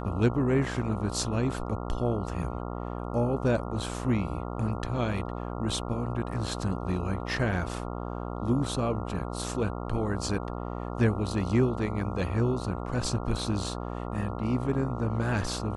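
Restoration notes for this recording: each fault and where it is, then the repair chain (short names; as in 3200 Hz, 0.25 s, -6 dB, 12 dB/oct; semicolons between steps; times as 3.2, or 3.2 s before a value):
buzz 60 Hz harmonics 23 -35 dBFS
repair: de-hum 60 Hz, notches 23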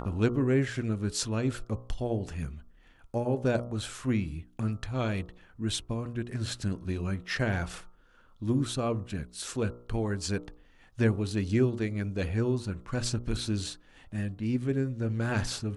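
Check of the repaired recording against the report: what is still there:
none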